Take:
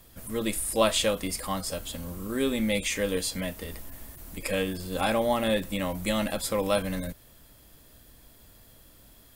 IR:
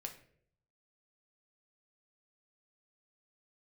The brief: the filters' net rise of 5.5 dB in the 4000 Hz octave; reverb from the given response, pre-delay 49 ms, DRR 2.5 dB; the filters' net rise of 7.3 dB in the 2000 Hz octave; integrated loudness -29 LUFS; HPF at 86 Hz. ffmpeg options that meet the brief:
-filter_complex "[0:a]highpass=86,equalizer=f=2k:t=o:g=8,equalizer=f=4k:t=o:g=4,asplit=2[a][b];[1:a]atrim=start_sample=2205,adelay=49[c];[b][c]afir=irnorm=-1:irlink=0,volume=0.5dB[d];[a][d]amix=inputs=2:normalize=0,volume=-5dB"

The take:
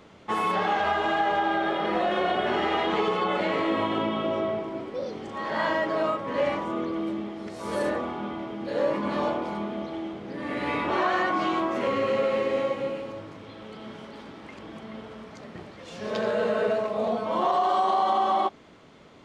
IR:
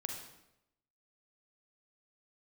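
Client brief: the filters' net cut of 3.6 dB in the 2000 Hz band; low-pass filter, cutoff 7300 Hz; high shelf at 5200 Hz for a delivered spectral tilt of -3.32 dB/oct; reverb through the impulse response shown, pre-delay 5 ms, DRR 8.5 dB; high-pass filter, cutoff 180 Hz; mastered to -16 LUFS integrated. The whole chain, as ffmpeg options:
-filter_complex "[0:a]highpass=180,lowpass=7.3k,equalizer=f=2k:t=o:g=-3.5,highshelf=f=5.2k:g=-8,asplit=2[a][b];[1:a]atrim=start_sample=2205,adelay=5[c];[b][c]afir=irnorm=-1:irlink=0,volume=-8.5dB[d];[a][d]amix=inputs=2:normalize=0,volume=11dB"

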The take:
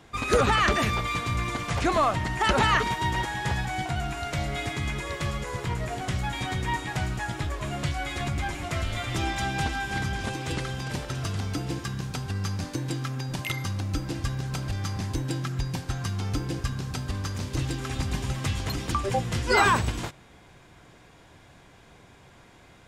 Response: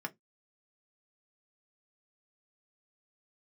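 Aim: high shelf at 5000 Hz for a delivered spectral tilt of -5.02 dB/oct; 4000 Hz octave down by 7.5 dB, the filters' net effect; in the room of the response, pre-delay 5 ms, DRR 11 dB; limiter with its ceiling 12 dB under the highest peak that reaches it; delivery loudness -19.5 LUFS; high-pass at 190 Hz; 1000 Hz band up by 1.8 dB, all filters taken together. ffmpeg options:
-filter_complex "[0:a]highpass=190,equalizer=f=1k:t=o:g=3,equalizer=f=4k:t=o:g=-8,highshelf=f=5k:g=-6,alimiter=limit=-20dB:level=0:latency=1,asplit=2[a][b];[1:a]atrim=start_sample=2205,adelay=5[c];[b][c]afir=irnorm=-1:irlink=0,volume=-12.5dB[d];[a][d]amix=inputs=2:normalize=0,volume=12.5dB"

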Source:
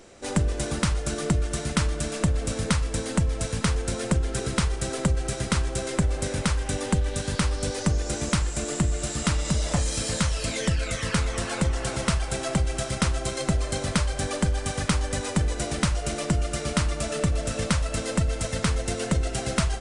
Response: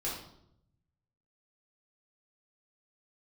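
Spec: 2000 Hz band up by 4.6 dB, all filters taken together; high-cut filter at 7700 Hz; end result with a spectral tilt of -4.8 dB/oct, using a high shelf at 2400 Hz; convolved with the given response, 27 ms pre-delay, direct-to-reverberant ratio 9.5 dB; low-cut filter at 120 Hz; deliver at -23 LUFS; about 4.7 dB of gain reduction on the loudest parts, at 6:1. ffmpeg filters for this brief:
-filter_complex "[0:a]highpass=120,lowpass=7.7k,equalizer=f=2k:t=o:g=9,highshelf=f=2.4k:g=-7,acompressor=threshold=-24dB:ratio=6,asplit=2[a][b];[1:a]atrim=start_sample=2205,adelay=27[c];[b][c]afir=irnorm=-1:irlink=0,volume=-13dB[d];[a][d]amix=inputs=2:normalize=0,volume=7dB"

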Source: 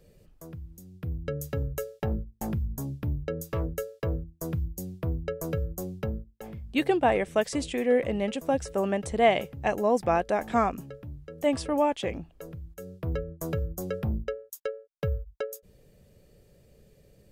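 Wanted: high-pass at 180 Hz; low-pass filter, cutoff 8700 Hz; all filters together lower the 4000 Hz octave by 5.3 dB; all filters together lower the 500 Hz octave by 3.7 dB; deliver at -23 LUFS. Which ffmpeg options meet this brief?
-af "highpass=180,lowpass=8.7k,equalizer=f=500:t=o:g=-4.5,equalizer=f=4k:t=o:g=-8,volume=10dB"

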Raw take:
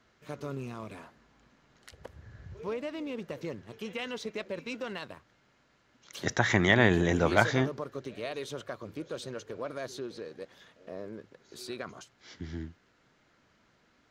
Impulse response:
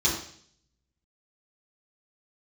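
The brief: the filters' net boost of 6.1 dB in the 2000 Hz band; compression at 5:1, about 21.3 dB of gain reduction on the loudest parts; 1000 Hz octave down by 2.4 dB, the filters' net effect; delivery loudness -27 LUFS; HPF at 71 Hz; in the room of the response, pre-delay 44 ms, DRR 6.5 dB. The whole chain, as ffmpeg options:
-filter_complex "[0:a]highpass=71,equalizer=f=1k:t=o:g=-6.5,equalizer=f=2k:t=o:g=9,acompressor=threshold=-38dB:ratio=5,asplit=2[a][b];[1:a]atrim=start_sample=2205,adelay=44[c];[b][c]afir=irnorm=-1:irlink=0,volume=-18dB[d];[a][d]amix=inputs=2:normalize=0,volume=14.5dB"

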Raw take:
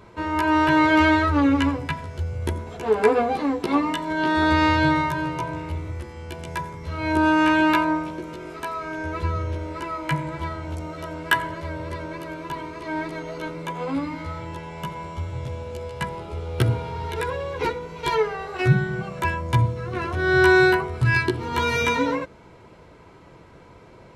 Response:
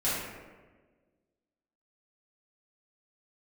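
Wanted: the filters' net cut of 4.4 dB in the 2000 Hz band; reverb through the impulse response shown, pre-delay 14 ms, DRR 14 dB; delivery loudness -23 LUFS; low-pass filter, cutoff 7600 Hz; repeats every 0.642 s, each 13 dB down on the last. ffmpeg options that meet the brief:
-filter_complex "[0:a]lowpass=7.6k,equalizer=f=2k:t=o:g=-6.5,aecho=1:1:642|1284|1926:0.224|0.0493|0.0108,asplit=2[a][b];[1:a]atrim=start_sample=2205,adelay=14[c];[b][c]afir=irnorm=-1:irlink=0,volume=-24dB[d];[a][d]amix=inputs=2:normalize=0,volume=1.5dB"

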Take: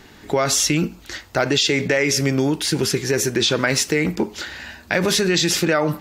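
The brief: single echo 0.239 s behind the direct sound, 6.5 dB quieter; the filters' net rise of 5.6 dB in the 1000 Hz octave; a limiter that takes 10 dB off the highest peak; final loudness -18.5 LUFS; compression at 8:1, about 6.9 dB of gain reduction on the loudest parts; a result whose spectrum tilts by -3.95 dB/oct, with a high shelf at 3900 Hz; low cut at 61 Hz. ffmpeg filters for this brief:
-af "highpass=61,equalizer=f=1k:t=o:g=8.5,highshelf=f=3.9k:g=-9,acompressor=threshold=-18dB:ratio=8,alimiter=limit=-14dB:level=0:latency=1,aecho=1:1:239:0.473,volume=6dB"

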